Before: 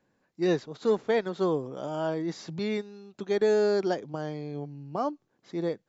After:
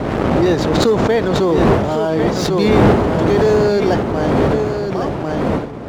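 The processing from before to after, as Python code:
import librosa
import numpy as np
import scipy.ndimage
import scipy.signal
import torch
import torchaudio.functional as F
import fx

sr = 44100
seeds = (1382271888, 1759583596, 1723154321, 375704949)

p1 = fx.fade_out_tail(x, sr, length_s=1.76)
p2 = fx.dmg_wind(p1, sr, seeds[0], corner_hz=470.0, level_db=-28.0)
p3 = scipy.signal.sosfilt(scipy.signal.butter(2, 57.0, 'highpass', fs=sr, output='sos'), p2)
p4 = fx.leveller(p3, sr, passes=2)
p5 = p4 + fx.echo_single(p4, sr, ms=1098, db=-7.5, dry=0)
p6 = fx.pre_swell(p5, sr, db_per_s=21.0)
y = F.gain(torch.from_numpy(p6), 2.5).numpy()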